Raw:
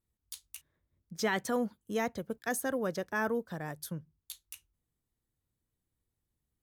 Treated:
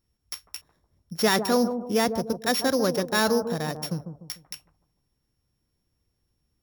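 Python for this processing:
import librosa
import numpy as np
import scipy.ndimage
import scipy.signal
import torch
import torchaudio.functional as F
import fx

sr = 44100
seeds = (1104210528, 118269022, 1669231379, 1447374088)

p1 = np.r_[np.sort(x[:len(x) // 8 * 8].reshape(-1, 8), axis=1).ravel(), x[len(x) // 8 * 8:]]
p2 = p1 + fx.echo_bbd(p1, sr, ms=148, stages=1024, feedback_pct=39, wet_db=-8, dry=0)
y = p2 * 10.0 ** (9.0 / 20.0)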